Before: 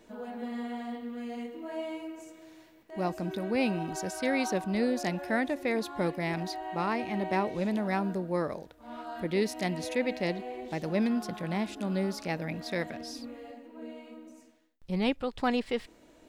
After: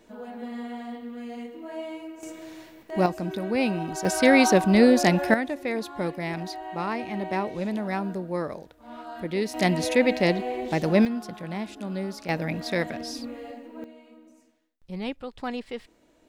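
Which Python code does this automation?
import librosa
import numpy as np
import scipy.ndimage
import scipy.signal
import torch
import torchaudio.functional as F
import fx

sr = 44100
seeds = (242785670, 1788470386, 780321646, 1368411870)

y = fx.gain(x, sr, db=fx.steps((0.0, 1.0), (2.23, 10.0), (3.06, 3.5), (4.05, 11.5), (5.34, 1.0), (9.54, 9.0), (11.05, -1.0), (12.29, 6.0), (13.84, -4.0)))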